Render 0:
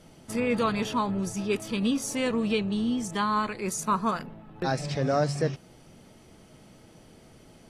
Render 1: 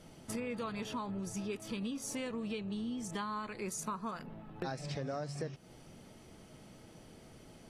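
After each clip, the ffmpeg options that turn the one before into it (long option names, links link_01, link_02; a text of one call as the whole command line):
ffmpeg -i in.wav -af "acompressor=threshold=-34dB:ratio=6,volume=-2.5dB" out.wav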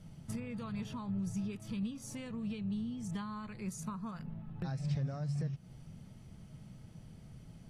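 ffmpeg -i in.wav -af "lowshelf=frequency=230:width_type=q:width=1.5:gain=12,volume=-6.5dB" out.wav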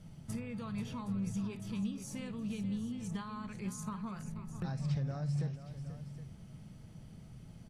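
ffmpeg -i in.wav -af "aecho=1:1:55|485|768:0.15|0.266|0.211" out.wav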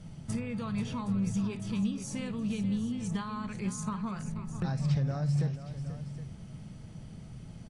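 ffmpeg -i in.wav -af "aresample=22050,aresample=44100,volume=6dB" out.wav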